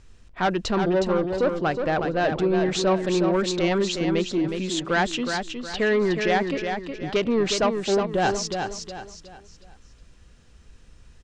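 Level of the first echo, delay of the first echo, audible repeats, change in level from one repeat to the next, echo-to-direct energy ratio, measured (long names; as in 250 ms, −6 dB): −6.0 dB, 365 ms, 4, −9.0 dB, −5.5 dB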